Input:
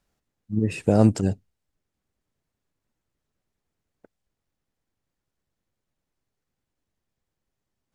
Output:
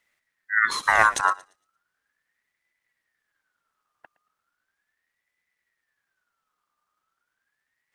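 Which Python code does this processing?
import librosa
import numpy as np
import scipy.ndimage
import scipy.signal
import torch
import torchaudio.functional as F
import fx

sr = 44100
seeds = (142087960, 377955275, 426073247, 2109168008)

y = fx.tilt_shelf(x, sr, db=-5.5, hz=730.0, at=(0.65, 1.25))
y = fx.echo_thinned(y, sr, ms=115, feedback_pct=26, hz=830.0, wet_db=-15.0)
y = fx.ring_lfo(y, sr, carrier_hz=1600.0, swing_pct=25, hz=0.37)
y = y * 10.0 ** (5.0 / 20.0)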